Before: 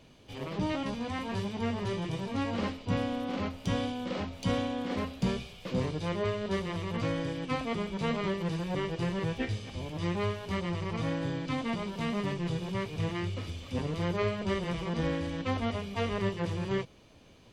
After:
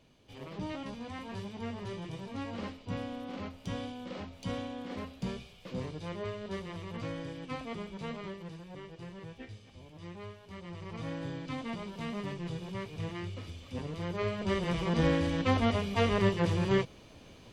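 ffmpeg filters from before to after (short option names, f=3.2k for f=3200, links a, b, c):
-af "volume=11dB,afade=t=out:st=7.81:d=0.83:silence=0.446684,afade=t=in:st=10.54:d=0.66:silence=0.375837,afade=t=in:st=14.09:d=0.97:silence=0.334965"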